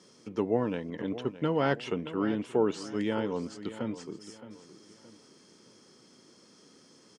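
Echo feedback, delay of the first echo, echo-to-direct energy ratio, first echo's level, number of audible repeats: 36%, 619 ms, -13.5 dB, -14.0 dB, 3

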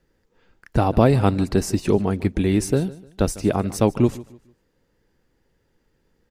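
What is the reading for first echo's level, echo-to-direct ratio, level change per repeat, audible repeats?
-19.0 dB, -18.5 dB, -10.0 dB, 2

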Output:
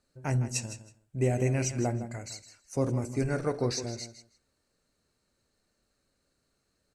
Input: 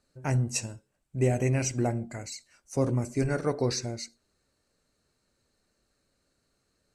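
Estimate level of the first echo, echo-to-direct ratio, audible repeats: -12.0 dB, -12.0 dB, 2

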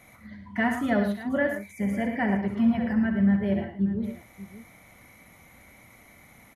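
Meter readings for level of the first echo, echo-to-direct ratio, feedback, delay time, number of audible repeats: -8.5 dB, -5.0 dB, no regular repeats, 66 ms, 4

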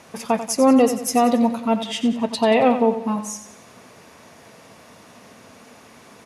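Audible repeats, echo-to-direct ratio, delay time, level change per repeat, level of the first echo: 4, -10.0 dB, 91 ms, -6.5 dB, -11.0 dB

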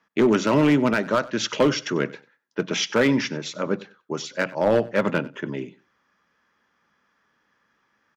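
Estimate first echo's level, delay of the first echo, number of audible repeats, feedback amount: -20.5 dB, 95 ms, 2, 19%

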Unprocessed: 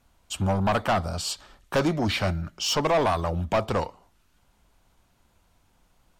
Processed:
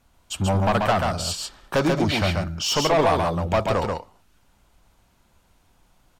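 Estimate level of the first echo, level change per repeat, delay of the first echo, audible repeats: -3.5 dB, no regular repeats, 136 ms, 1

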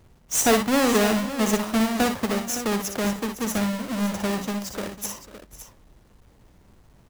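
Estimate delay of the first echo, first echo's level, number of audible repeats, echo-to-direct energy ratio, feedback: 59 ms, -7.0 dB, 3, -5.5 dB, no regular repeats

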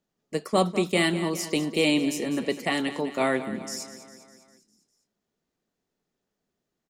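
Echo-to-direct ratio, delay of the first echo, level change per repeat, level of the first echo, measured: -11.5 dB, 201 ms, -5.0 dB, -13.0 dB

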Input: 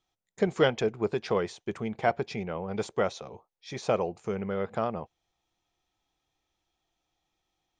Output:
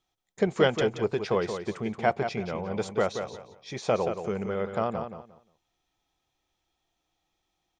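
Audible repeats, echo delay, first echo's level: 3, 177 ms, -8.0 dB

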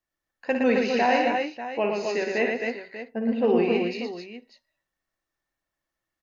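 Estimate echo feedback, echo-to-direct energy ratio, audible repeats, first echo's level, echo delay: no regular repeats, 0.5 dB, 5, -7.5 dB, 57 ms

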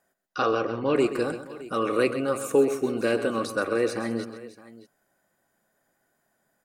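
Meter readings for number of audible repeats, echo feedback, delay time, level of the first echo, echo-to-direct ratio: 3, no regular repeats, 130 ms, -11.5 dB, -10.0 dB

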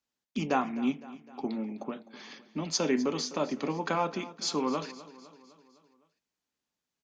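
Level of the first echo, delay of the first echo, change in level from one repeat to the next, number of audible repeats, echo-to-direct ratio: -17.5 dB, 255 ms, -5.0 dB, 4, -16.0 dB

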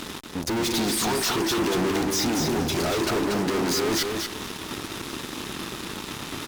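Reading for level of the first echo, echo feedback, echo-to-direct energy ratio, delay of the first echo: -4.5 dB, 17%, -4.5 dB, 235 ms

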